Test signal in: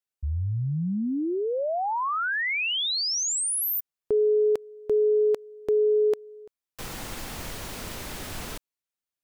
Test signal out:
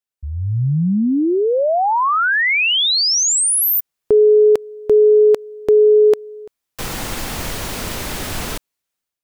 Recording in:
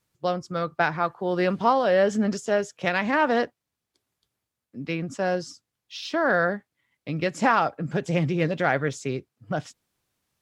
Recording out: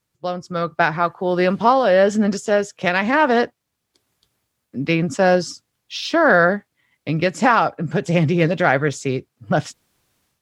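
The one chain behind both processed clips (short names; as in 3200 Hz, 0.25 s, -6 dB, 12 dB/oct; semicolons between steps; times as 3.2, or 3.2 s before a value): AGC gain up to 11 dB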